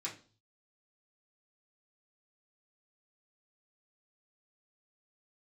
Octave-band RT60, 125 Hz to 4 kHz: 0.80, 0.45, 0.40, 0.35, 0.30, 0.40 seconds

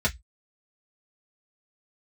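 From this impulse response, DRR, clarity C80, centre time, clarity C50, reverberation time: −4.5 dB, 36.5 dB, 8 ms, 23.0 dB, 0.10 s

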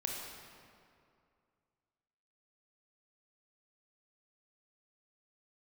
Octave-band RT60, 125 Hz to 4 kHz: 2.5, 2.4, 2.4, 2.3, 1.9, 1.5 seconds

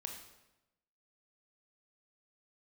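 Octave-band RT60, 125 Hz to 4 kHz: 1.1, 1.1, 1.0, 0.90, 0.85, 0.80 seconds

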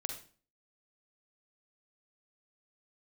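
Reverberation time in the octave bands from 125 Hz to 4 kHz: 0.50, 0.50, 0.45, 0.40, 0.40, 0.35 seconds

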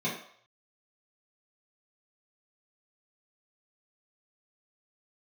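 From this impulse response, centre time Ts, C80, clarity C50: 34 ms, 9.5 dB, 5.5 dB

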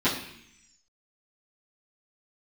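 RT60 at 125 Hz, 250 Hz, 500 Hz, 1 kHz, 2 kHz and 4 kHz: 0.95, 0.95, 0.70, 0.70, 1.0, 1.2 seconds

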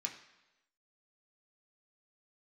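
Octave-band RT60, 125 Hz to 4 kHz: 0.90, 0.90, 1.0, 1.0, 1.0, 0.95 seconds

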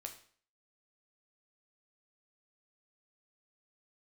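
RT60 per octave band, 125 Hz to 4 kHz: 0.50, 0.50, 0.50, 0.50, 0.50, 0.45 seconds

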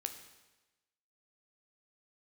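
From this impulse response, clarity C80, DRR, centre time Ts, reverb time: 11.0 dB, 6.5 dB, 16 ms, 1.1 s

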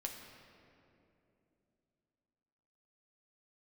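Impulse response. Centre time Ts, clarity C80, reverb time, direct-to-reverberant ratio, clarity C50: 63 ms, 5.5 dB, 2.9 s, 1.0 dB, 4.5 dB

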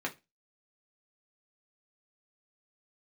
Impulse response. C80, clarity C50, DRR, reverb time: 26.5 dB, 18.0 dB, −2.0 dB, 0.25 s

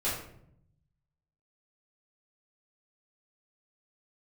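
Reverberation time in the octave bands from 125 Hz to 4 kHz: 1.4, 1.1, 0.80, 0.60, 0.55, 0.45 seconds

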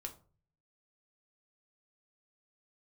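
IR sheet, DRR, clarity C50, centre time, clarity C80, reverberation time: 3.0 dB, 14.0 dB, 9 ms, 19.0 dB, 0.40 s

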